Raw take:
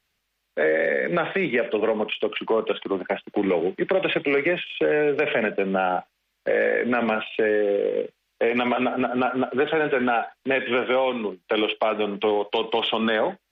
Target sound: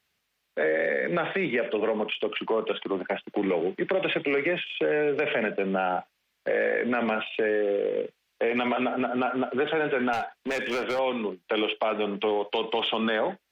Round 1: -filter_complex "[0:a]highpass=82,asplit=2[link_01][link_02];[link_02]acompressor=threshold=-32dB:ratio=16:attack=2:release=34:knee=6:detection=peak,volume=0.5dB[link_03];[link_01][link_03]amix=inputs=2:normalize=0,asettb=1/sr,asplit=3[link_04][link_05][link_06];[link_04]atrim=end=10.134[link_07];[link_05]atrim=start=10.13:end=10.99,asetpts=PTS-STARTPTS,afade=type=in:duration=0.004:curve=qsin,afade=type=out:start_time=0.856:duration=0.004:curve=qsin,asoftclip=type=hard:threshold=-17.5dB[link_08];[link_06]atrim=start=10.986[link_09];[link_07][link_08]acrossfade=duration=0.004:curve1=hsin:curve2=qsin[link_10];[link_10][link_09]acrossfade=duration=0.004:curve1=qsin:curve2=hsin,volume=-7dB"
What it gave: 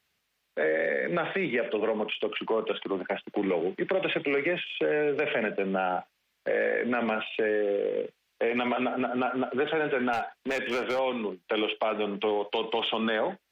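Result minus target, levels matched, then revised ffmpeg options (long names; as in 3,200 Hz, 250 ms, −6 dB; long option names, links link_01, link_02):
downward compressor: peak gain reduction +6.5 dB
-filter_complex "[0:a]highpass=82,asplit=2[link_01][link_02];[link_02]acompressor=threshold=-25dB:ratio=16:attack=2:release=34:knee=6:detection=peak,volume=0.5dB[link_03];[link_01][link_03]amix=inputs=2:normalize=0,asettb=1/sr,asplit=3[link_04][link_05][link_06];[link_04]atrim=end=10.134[link_07];[link_05]atrim=start=10.13:end=10.99,asetpts=PTS-STARTPTS,afade=type=in:duration=0.004:curve=qsin,afade=type=out:start_time=0.856:duration=0.004:curve=qsin,asoftclip=type=hard:threshold=-17.5dB[link_08];[link_06]atrim=start=10.986[link_09];[link_07][link_08]acrossfade=duration=0.004:curve1=hsin:curve2=qsin[link_10];[link_10][link_09]acrossfade=duration=0.004:curve1=qsin:curve2=hsin,volume=-7dB"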